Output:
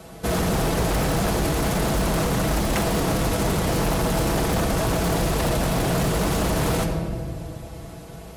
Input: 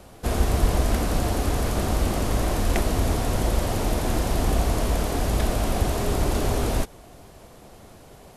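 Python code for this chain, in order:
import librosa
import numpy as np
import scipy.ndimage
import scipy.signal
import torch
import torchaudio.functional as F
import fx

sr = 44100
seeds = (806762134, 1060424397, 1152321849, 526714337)

p1 = fx.octave_divider(x, sr, octaves=2, level_db=3.0)
p2 = fx.room_shoebox(p1, sr, seeds[0], volume_m3=3200.0, walls='mixed', distance_m=1.5)
p3 = np.clip(10.0 ** (18.5 / 20.0) * p2, -1.0, 1.0) / 10.0 ** (18.5 / 20.0)
p4 = p2 + F.gain(torch.from_numpy(p3), -7.5).numpy()
p5 = scipy.signal.sosfilt(scipy.signal.butter(4, 53.0, 'highpass', fs=sr, output='sos'), p4)
p6 = p5 + 0.58 * np.pad(p5, (int(6.1 * sr / 1000.0), 0))[:len(p5)]
y = 10.0 ** (-16.5 / 20.0) * (np.abs((p6 / 10.0 ** (-16.5 / 20.0) + 3.0) % 4.0 - 2.0) - 1.0)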